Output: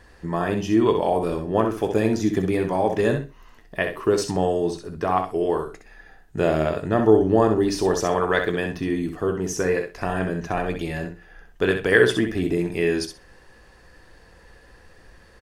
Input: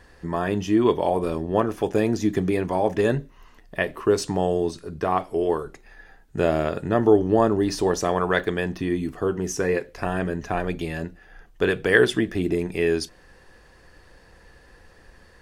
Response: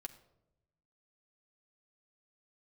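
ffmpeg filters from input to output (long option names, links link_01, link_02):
-filter_complex "[0:a]asplit=2[link_01][link_02];[link_02]adelay=18,volume=-14dB[link_03];[link_01][link_03]amix=inputs=2:normalize=0,aecho=1:1:64|128|192:0.447|0.0759|0.0129"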